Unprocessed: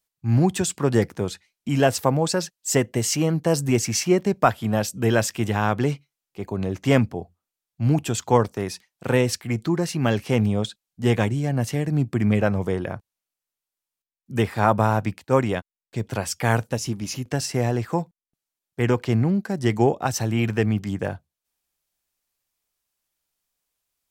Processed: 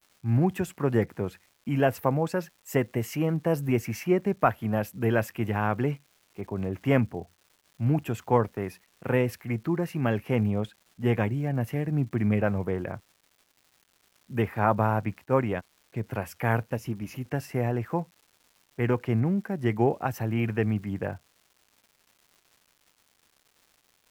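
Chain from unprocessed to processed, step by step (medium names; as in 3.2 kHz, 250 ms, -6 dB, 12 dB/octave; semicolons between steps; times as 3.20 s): high-order bell 5.6 kHz -15 dB; crackle 410 per s -44 dBFS; trim -4.5 dB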